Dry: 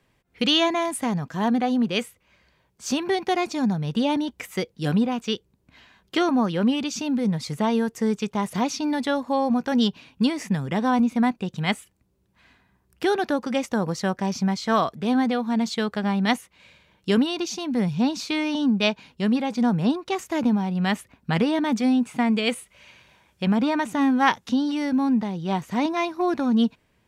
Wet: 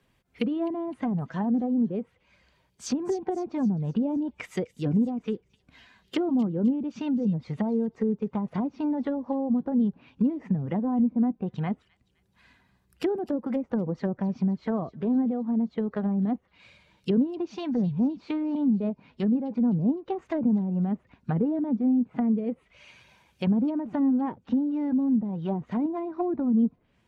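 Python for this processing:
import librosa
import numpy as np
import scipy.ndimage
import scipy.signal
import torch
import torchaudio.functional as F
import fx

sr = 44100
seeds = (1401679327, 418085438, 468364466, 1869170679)

y = fx.spec_quant(x, sr, step_db=15)
y = fx.env_lowpass_down(y, sr, base_hz=420.0, full_db=-20.5)
y = fx.echo_wet_highpass(y, sr, ms=257, feedback_pct=47, hz=3900.0, wet_db=-12.0)
y = y * 10.0 ** (-1.5 / 20.0)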